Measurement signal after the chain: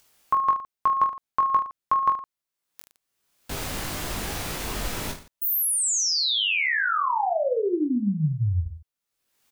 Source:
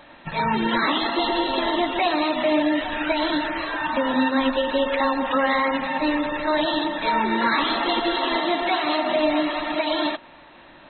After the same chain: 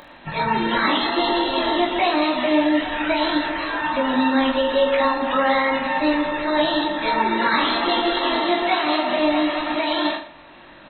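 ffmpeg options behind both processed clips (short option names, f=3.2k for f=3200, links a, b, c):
-af "acompressor=mode=upward:threshold=-43dB:ratio=2.5,aecho=1:1:20|45|76.25|115.3|164.1:0.631|0.398|0.251|0.158|0.1"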